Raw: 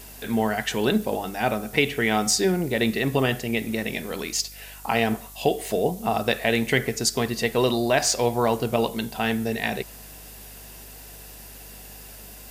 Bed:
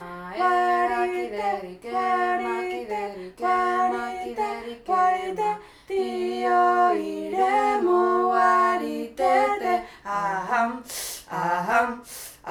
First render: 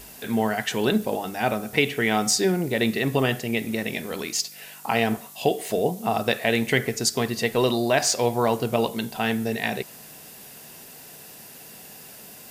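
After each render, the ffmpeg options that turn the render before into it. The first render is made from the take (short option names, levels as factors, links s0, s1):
-af "bandreject=f=50:t=h:w=4,bandreject=f=100:t=h:w=4"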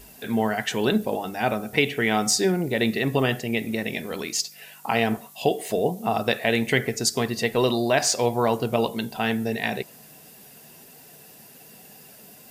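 -af "afftdn=nr=6:nf=-45"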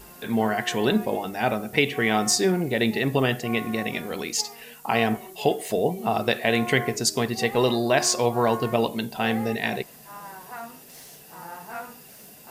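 -filter_complex "[1:a]volume=0.168[s0];[0:a][s0]amix=inputs=2:normalize=0"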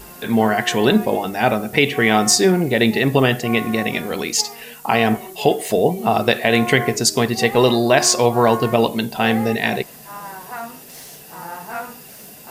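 -af "volume=2.24,alimiter=limit=0.794:level=0:latency=1"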